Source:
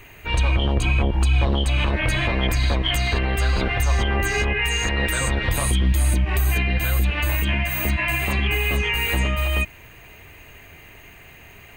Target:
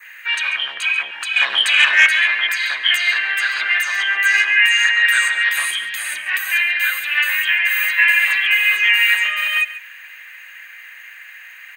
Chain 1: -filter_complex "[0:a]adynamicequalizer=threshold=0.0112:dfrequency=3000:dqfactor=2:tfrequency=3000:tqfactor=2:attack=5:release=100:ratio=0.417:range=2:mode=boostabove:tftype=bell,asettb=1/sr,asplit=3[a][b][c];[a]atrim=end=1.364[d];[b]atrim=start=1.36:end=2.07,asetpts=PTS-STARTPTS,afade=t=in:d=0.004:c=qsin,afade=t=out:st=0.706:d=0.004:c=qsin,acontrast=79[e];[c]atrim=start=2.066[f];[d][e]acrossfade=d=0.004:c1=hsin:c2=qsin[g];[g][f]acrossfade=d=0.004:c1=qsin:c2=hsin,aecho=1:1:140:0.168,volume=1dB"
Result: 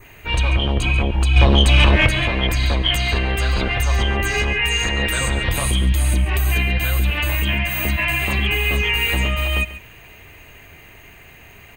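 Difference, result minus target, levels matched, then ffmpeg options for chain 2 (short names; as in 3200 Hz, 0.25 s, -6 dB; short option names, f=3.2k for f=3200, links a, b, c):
2000 Hz band -5.0 dB
-filter_complex "[0:a]adynamicequalizer=threshold=0.0112:dfrequency=3000:dqfactor=2:tfrequency=3000:tqfactor=2:attack=5:release=100:ratio=0.417:range=2:mode=boostabove:tftype=bell,highpass=f=1.7k:t=q:w=4.8,asettb=1/sr,asplit=3[a][b][c];[a]atrim=end=1.364[d];[b]atrim=start=1.36:end=2.07,asetpts=PTS-STARTPTS,afade=t=in:d=0.004:c=qsin,afade=t=out:st=0.706:d=0.004:c=qsin,acontrast=79[e];[c]atrim=start=2.066[f];[d][e]acrossfade=d=0.004:c1=hsin:c2=qsin[g];[g][f]acrossfade=d=0.004:c1=qsin:c2=hsin,aecho=1:1:140:0.168,volume=1dB"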